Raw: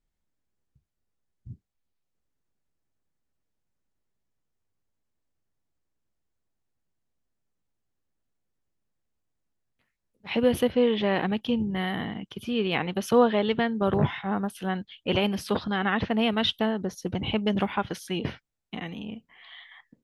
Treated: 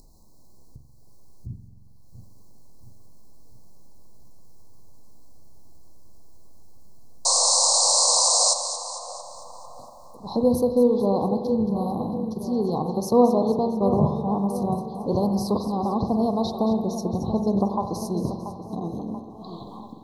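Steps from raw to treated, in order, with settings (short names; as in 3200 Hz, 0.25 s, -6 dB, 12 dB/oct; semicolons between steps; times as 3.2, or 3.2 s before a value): painted sound noise, 7.25–8.54, 480–9100 Hz -20 dBFS; Chebyshev band-stop 1100–4100 Hz, order 5; in parallel at +2 dB: upward compressor, threshold -26 dBFS; on the sum: split-band echo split 2000 Hz, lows 0.684 s, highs 0.225 s, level -11 dB; spring tank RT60 1.5 s, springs 45 ms, chirp 55 ms, DRR 6.5 dB; gain -4.5 dB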